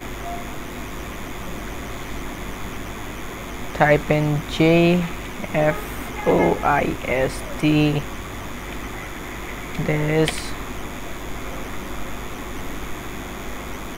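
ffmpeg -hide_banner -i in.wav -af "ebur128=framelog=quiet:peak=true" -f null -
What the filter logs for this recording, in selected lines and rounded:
Integrated loudness:
  I:         -23.8 LUFS
  Threshold: -33.8 LUFS
Loudness range:
  LRA:        12.0 LU
  Threshold: -43.0 LUFS
  LRA low:   -32.0 LUFS
  LRA high:  -20.0 LUFS
True peak:
  Peak:       -1.6 dBFS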